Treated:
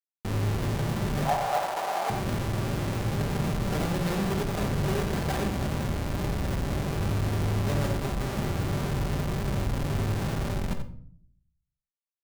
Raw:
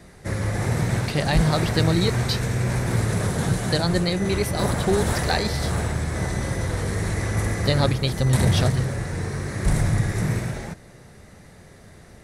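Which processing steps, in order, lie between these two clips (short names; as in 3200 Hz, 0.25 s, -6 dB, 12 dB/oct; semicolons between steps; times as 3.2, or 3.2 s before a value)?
LPF 2700 Hz 12 dB/oct; compressor 2:1, threshold -37 dBFS, peak gain reduction 12.5 dB; Schmitt trigger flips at -34 dBFS; 1.25–2.1 resonant high-pass 740 Hz, resonance Q 4.9; outdoor echo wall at 15 m, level -10 dB; reverb RT60 0.55 s, pre-delay 5 ms, DRR 5.5 dB; gain +3.5 dB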